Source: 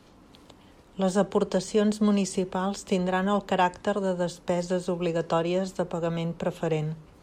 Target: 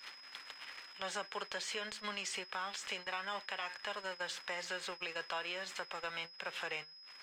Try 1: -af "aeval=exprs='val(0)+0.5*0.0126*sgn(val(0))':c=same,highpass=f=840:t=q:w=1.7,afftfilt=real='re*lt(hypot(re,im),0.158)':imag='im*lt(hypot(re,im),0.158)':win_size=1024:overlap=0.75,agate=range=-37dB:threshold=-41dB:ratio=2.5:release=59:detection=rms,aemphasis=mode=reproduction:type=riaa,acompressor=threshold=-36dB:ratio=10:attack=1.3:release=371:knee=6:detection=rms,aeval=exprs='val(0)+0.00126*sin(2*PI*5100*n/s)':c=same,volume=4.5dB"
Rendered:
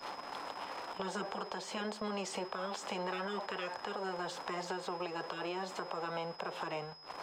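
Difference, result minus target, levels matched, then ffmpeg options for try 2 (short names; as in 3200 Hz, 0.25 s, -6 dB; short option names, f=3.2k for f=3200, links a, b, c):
2000 Hz band -4.5 dB
-af "aeval=exprs='val(0)+0.5*0.0126*sgn(val(0))':c=same,highpass=f=1.9k:t=q:w=1.7,afftfilt=real='re*lt(hypot(re,im),0.158)':imag='im*lt(hypot(re,im),0.158)':win_size=1024:overlap=0.75,agate=range=-37dB:threshold=-41dB:ratio=2.5:release=59:detection=rms,aemphasis=mode=reproduction:type=riaa,acompressor=threshold=-36dB:ratio=10:attack=1.3:release=371:knee=6:detection=rms,aeval=exprs='val(0)+0.00126*sin(2*PI*5100*n/s)':c=same,volume=4.5dB"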